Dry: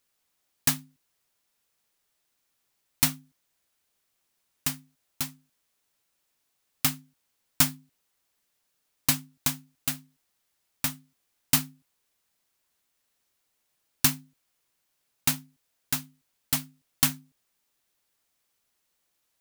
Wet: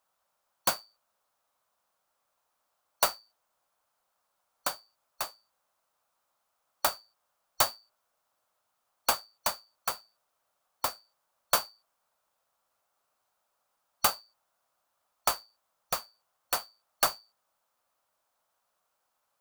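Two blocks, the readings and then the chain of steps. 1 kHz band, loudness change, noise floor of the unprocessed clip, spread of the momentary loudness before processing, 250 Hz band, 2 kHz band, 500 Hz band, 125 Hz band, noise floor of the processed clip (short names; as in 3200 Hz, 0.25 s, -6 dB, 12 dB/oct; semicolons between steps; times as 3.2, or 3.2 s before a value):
+8.0 dB, -4.0 dB, -76 dBFS, 11 LU, -16.0 dB, -1.5 dB, +11.5 dB, -18.5 dB, -79 dBFS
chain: four-band scrambler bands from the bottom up 2341; band shelf 870 Hz +13.5 dB; gain -5.5 dB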